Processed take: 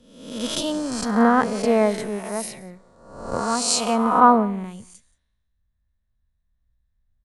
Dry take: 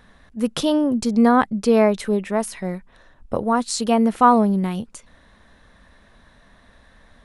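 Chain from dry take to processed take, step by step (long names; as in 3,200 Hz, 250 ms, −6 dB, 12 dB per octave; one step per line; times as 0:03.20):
peak hold with a rise ahead of every peak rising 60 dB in 1.56 s
single-tap delay 179 ms −16.5 dB
multiband upward and downward expander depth 100%
level −7 dB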